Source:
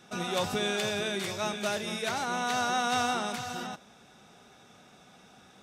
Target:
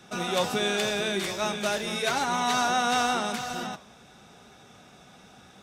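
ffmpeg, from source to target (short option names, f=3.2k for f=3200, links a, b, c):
-filter_complex "[0:a]asettb=1/sr,asplit=3[a][b][c];[a]atrim=end=1.954[d];[b]atrim=start=1.95:end=2.68,asetpts=PTS-STARTPTS,afade=t=in:d=0.004:c=qsin,afade=t=out:st=0.726:d=0.004:c=qsin,aecho=1:1:7.2:0.63,atrim=end_sample=32193[e];[c]atrim=start=2.676[f];[d][e]acrossfade=d=0.004:c1=hsin:c2=qsin[g];[g][f]acrossfade=d=0.004:c1=qsin:c2=hsin,acrossover=split=120[h][i];[h]aeval=exprs='(mod(531*val(0)+1,2)-1)/531':c=same[j];[i]flanger=delay=4.3:depth=9.5:regen=86:speed=0.89:shape=triangular[k];[j][k]amix=inputs=2:normalize=0,volume=8dB"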